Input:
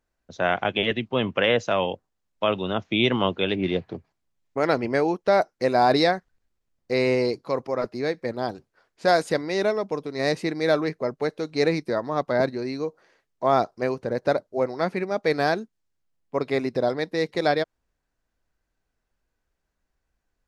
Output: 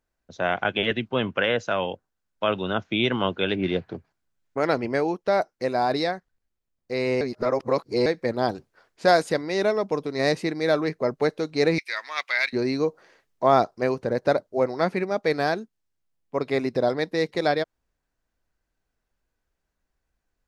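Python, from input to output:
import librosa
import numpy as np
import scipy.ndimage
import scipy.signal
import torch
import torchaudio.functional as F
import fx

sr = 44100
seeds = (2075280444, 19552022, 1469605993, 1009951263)

y = fx.peak_eq(x, sr, hz=1500.0, db=8.0, octaves=0.25, at=(0.62, 4.61))
y = fx.highpass_res(y, sr, hz=2300.0, q=4.9, at=(11.78, 12.53))
y = fx.edit(y, sr, fx.reverse_span(start_s=7.21, length_s=0.85), tone=tone)
y = fx.rider(y, sr, range_db=10, speed_s=0.5)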